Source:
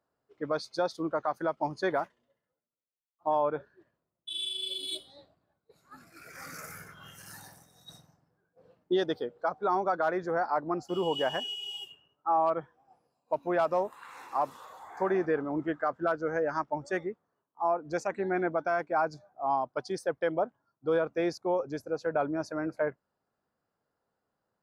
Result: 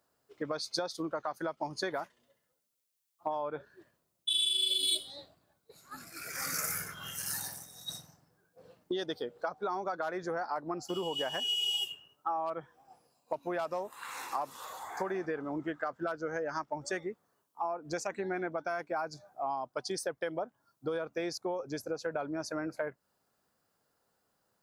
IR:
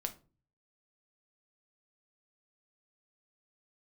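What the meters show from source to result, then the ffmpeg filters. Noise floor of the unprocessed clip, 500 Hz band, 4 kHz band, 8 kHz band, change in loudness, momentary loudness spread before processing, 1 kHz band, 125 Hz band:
-85 dBFS, -6.5 dB, +5.5 dB, +10.5 dB, -4.0 dB, 14 LU, -6.0 dB, -4.5 dB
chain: -af "acompressor=threshold=0.0158:ratio=6,highshelf=f=3100:g=12,volume=1.41"

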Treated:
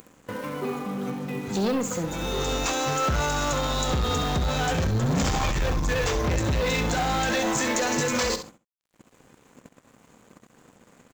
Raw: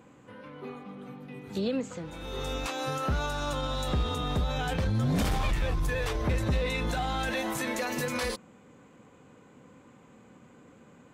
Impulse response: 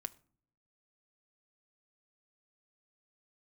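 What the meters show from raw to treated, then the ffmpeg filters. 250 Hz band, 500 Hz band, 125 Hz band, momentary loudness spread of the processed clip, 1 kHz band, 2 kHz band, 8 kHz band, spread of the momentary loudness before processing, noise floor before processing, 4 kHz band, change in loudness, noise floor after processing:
+5.5 dB, +6.0 dB, +3.5 dB, 7 LU, +7.0 dB, +6.0 dB, +12.0 dB, 14 LU, -56 dBFS, +6.5 dB, +5.0 dB, -63 dBFS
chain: -filter_complex "[0:a]agate=range=0.0316:threshold=0.00355:ratio=16:detection=peak,highpass=f=46:p=1,equalizer=f=3600:t=o:w=1.8:g=-7.5,acontrast=69,aresample=16000,asoftclip=type=tanh:threshold=0.0531,aresample=44100,acompressor=mode=upward:threshold=0.0126:ratio=2.5,aeval=exprs='sgn(val(0))*max(abs(val(0))-0.00126,0)':c=same,alimiter=level_in=1.88:limit=0.0631:level=0:latency=1:release=444,volume=0.531,aemphasis=mode=production:type=75fm,asplit=2[s0][s1];[s1]aecho=0:1:66|132:0.316|0.0506[s2];[s0][s2]amix=inputs=2:normalize=0,volume=2.66"

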